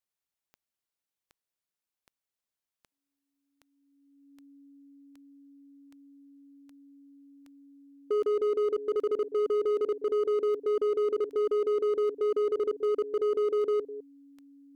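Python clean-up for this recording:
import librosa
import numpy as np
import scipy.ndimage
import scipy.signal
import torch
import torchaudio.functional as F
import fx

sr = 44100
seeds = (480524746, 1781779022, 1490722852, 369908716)

y = fx.fix_declip(x, sr, threshold_db=-24.0)
y = fx.fix_declick_ar(y, sr, threshold=10.0)
y = fx.notch(y, sr, hz=280.0, q=30.0)
y = fx.fix_echo_inverse(y, sr, delay_ms=206, level_db=-15.5)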